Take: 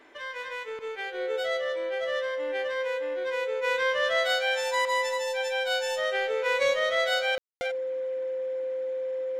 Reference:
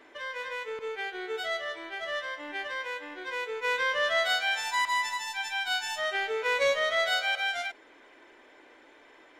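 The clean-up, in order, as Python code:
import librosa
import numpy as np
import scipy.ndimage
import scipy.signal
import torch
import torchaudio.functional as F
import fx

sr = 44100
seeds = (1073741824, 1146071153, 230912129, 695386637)

y = fx.notch(x, sr, hz=520.0, q=30.0)
y = fx.fix_ambience(y, sr, seeds[0], print_start_s=0.0, print_end_s=0.5, start_s=7.38, end_s=7.61)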